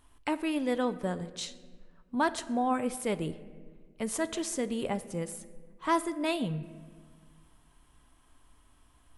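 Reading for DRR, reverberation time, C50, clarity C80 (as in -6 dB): 11.5 dB, 1.6 s, 15.0 dB, 16.5 dB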